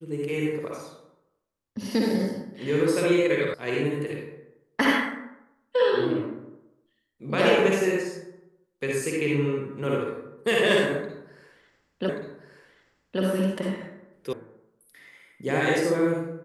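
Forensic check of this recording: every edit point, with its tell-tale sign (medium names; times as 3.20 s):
3.54 s: sound stops dead
12.09 s: repeat of the last 1.13 s
14.33 s: sound stops dead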